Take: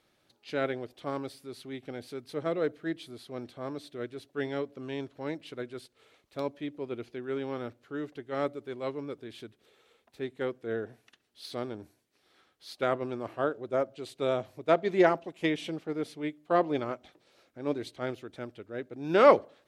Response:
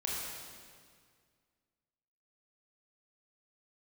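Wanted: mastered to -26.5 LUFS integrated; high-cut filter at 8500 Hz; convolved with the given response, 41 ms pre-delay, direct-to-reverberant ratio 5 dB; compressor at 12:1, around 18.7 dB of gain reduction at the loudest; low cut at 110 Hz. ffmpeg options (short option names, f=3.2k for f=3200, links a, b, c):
-filter_complex "[0:a]highpass=110,lowpass=8.5k,acompressor=threshold=-32dB:ratio=12,asplit=2[a][b];[1:a]atrim=start_sample=2205,adelay=41[c];[b][c]afir=irnorm=-1:irlink=0,volume=-9dB[d];[a][d]amix=inputs=2:normalize=0,volume=12.5dB"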